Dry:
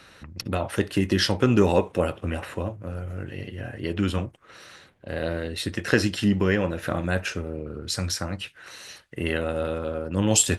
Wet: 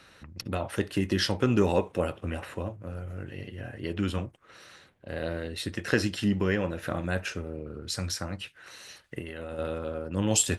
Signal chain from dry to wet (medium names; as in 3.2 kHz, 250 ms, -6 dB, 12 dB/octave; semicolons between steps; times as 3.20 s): 9.04–9.59 s: compressor with a negative ratio -33 dBFS, ratio -1; trim -4.5 dB